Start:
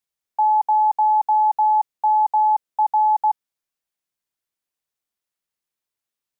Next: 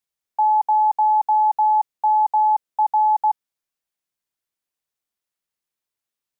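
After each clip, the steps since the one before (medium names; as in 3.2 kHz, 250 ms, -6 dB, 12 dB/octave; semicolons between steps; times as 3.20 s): no audible change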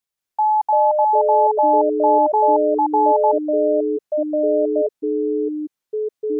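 ever faster or slower copies 179 ms, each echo -6 st, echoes 3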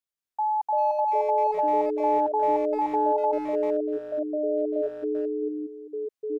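speakerphone echo 390 ms, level -10 dB; trim -8.5 dB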